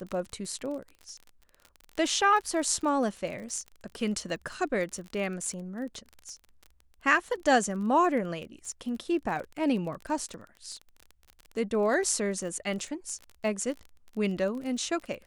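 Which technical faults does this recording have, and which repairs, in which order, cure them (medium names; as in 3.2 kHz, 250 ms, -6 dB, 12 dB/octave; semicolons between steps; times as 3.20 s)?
crackle 32 per s -36 dBFS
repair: de-click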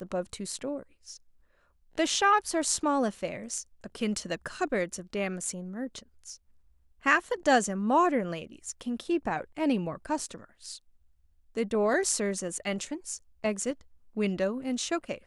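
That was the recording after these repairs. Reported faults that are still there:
nothing left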